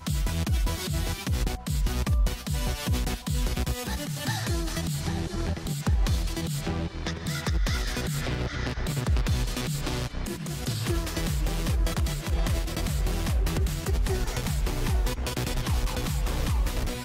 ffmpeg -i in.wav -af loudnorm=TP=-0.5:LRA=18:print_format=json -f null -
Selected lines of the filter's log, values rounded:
"input_i" : "-29.3",
"input_tp" : "-15.9",
"input_lra" : "1.0",
"input_thresh" : "-39.3",